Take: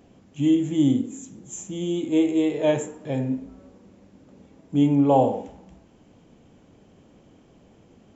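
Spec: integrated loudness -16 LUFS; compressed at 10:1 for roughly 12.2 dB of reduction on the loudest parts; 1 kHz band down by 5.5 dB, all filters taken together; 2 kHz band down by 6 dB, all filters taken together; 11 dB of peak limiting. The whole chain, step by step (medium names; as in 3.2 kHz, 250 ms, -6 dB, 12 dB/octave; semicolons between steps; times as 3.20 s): peaking EQ 1 kHz -7 dB; peaking EQ 2 kHz -6 dB; compression 10:1, threshold -28 dBFS; trim +23 dB; peak limiter -7.5 dBFS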